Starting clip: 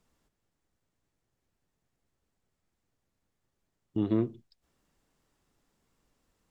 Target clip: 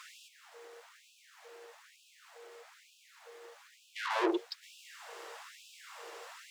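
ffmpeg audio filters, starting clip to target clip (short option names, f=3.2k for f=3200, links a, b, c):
-filter_complex "[0:a]asplit=2[a][b];[b]highpass=f=720:p=1,volume=41dB,asoftclip=type=tanh:threshold=-17dB[c];[a][c]amix=inputs=2:normalize=0,lowpass=f=2.1k:p=1,volume=-6dB,aeval=exprs='val(0)+0.00282*sin(2*PI*470*n/s)':c=same,afftfilt=real='re*gte(b*sr/1024,310*pow(2500/310,0.5+0.5*sin(2*PI*1.1*pts/sr)))':imag='im*gte(b*sr/1024,310*pow(2500/310,0.5+0.5*sin(2*PI*1.1*pts/sr)))':win_size=1024:overlap=0.75"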